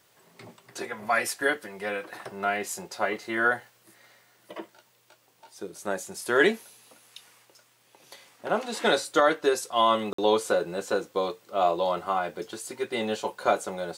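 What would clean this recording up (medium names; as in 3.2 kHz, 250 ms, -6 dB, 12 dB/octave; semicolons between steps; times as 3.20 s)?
interpolate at 10.13 s, 54 ms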